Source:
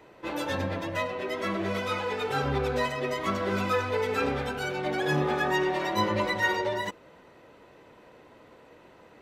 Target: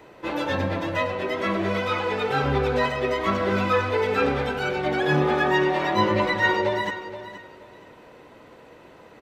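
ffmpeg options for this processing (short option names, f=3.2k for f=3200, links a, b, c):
-filter_complex "[0:a]acrossover=split=4700[a][b];[b]acompressor=threshold=-58dB:ratio=4:attack=1:release=60[c];[a][c]amix=inputs=2:normalize=0,asplit=2[d][e];[e]aecho=0:1:474|948|1422:0.224|0.0515|0.0118[f];[d][f]amix=inputs=2:normalize=0,volume=5dB"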